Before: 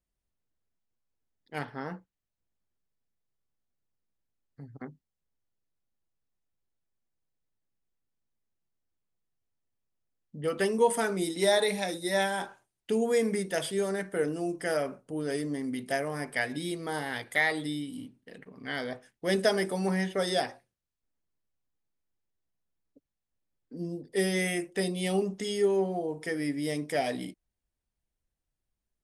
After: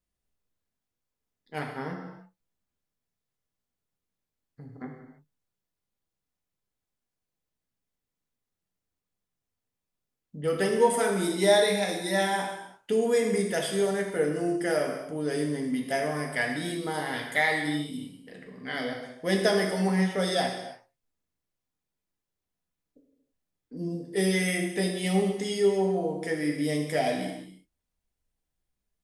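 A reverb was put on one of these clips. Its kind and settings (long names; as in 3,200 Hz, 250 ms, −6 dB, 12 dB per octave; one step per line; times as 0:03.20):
reverb whose tail is shaped and stops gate 360 ms falling, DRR 1 dB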